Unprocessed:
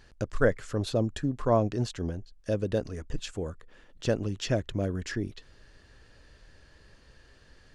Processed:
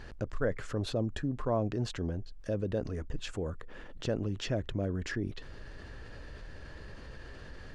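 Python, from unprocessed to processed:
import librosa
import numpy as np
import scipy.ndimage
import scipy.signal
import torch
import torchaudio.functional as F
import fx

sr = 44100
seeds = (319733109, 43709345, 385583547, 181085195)

y = fx.high_shelf(x, sr, hz=3400.0, db=-11.5)
y = fx.env_flatten(y, sr, amount_pct=50)
y = y * librosa.db_to_amplitude(-8.0)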